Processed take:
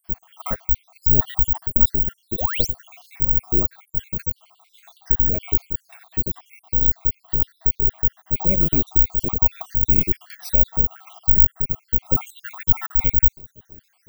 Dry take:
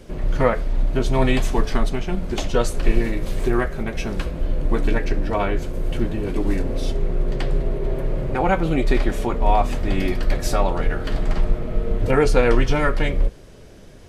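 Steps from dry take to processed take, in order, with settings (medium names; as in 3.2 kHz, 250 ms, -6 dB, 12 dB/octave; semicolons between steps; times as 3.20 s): random holes in the spectrogram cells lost 69%; tone controls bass +9 dB, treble +3 dB; painted sound rise, 2.38–2.67 s, 430–6700 Hz -22 dBFS; careless resampling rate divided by 2×, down none, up zero stuff; transformer saturation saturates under 64 Hz; trim -7 dB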